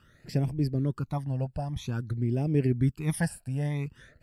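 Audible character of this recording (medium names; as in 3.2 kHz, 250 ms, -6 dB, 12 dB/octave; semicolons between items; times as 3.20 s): phasing stages 12, 0.51 Hz, lowest notch 350–1300 Hz; AAC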